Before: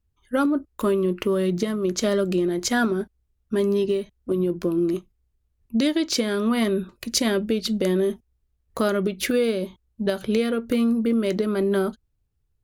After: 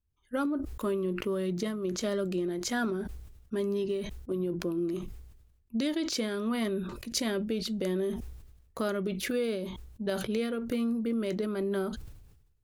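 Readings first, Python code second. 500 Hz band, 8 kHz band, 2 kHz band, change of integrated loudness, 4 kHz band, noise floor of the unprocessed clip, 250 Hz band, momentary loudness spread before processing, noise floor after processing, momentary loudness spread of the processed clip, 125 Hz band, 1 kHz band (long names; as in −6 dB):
−8.5 dB, −8.5 dB, −8.0 dB, −8.5 dB, −8.0 dB, −72 dBFS, −8.5 dB, 6 LU, −65 dBFS, 7 LU, −7.5 dB, −8.5 dB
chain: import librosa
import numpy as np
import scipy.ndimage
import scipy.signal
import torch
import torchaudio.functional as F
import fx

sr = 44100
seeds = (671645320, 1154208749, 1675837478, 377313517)

y = fx.sustainer(x, sr, db_per_s=54.0)
y = F.gain(torch.from_numpy(y), -9.0).numpy()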